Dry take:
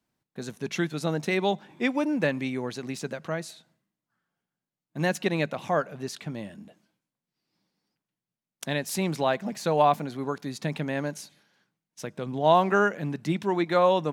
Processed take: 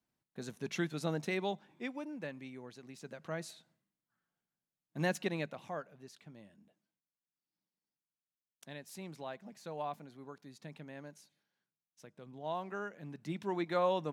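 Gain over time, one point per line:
1.15 s -7.5 dB
2.12 s -17.5 dB
2.93 s -17.5 dB
3.43 s -7 dB
5.11 s -7 dB
5.97 s -19 dB
12.85 s -19 dB
13.5 s -10 dB

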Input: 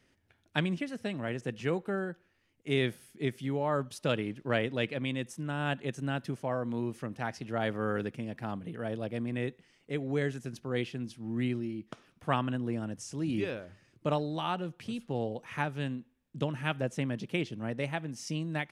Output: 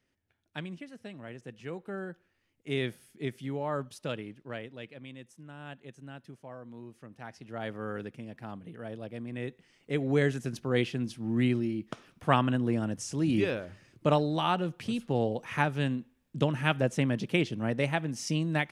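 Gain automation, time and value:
1.67 s -9 dB
2.11 s -2.5 dB
3.83 s -2.5 dB
4.77 s -12.5 dB
6.93 s -12.5 dB
7.67 s -5 dB
9.26 s -5 dB
10.05 s +5 dB

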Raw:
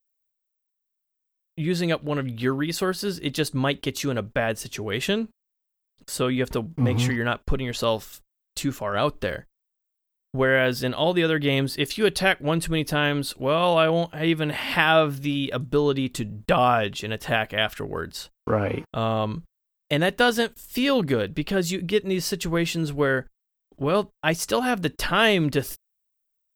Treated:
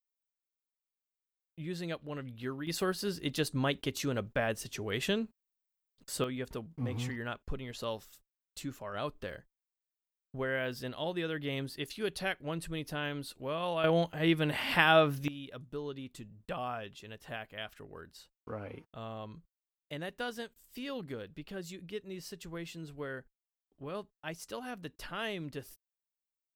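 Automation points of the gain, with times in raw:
-14.5 dB
from 2.67 s -7.5 dB
from 6.24 s -14 dB
from 13.84 s -5.5 dB
from 15.28 s -18.5 dB

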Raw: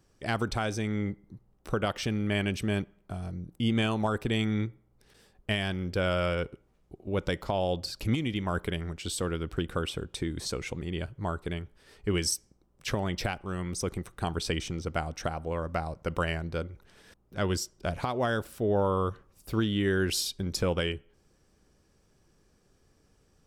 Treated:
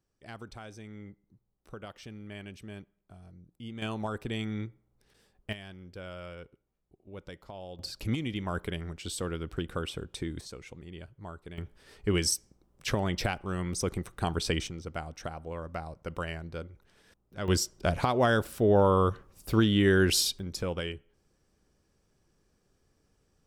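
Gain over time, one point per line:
-15 dB
from 3.82 s -6 dB
from 5.53 s -15 dB
from 7.79 s -3 dB
from 10.41 s -11 dB
from 11.58 s +1 dB
from 14.67 s -6 dB
from 17.48 s +4 dB
from 20.39 s -5 dB

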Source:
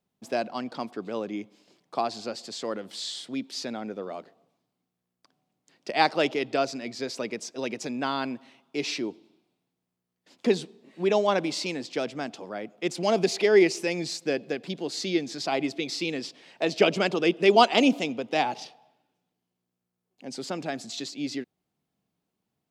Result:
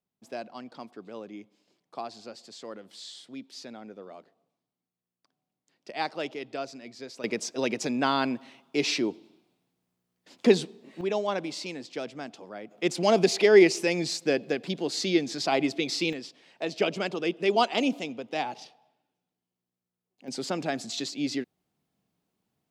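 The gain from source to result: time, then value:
-9 dB
from 7.24 s +3.5 dB
from 11.01 s -5.5 dB
from 12.71 s +2 dB
from 16.13 s -5.5 dB
from 20.28 s +2 dB

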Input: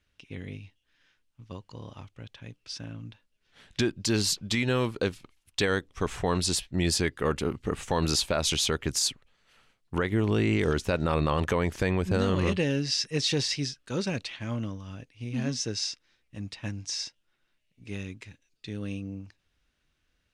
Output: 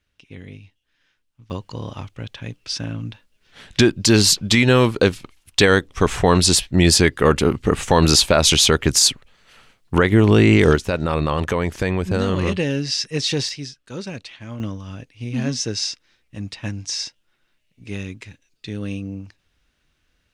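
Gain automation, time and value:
+1 dB
from 1.5 s +12 dB
from 10.76 s +5 dB
from 13.49 s -1 dB
from 14.6 s +7 dB

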